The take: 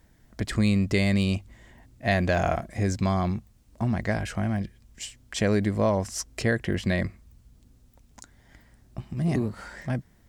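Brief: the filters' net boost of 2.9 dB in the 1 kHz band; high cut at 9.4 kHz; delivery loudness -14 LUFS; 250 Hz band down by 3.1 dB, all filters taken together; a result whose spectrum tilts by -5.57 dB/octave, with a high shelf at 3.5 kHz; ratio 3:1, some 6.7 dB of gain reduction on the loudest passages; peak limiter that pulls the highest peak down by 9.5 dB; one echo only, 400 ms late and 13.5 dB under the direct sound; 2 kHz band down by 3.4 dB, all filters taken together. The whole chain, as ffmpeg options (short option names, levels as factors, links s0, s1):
-af "lowpass=9400,equalizer=f=250:t=o:g=-4.5,equalizer=f=1000:t=o:g=6,equalizer=f=2000:t=o:g=-5,highshelf=f=3500:g=-3.5,acompressor=threshold=0.0398:ratio=3,alimiter=level_in=1.19:limit=0.0631:level=0:latency=1,volume=0.841,aecho=1:1:400:0.211,volume=14.1"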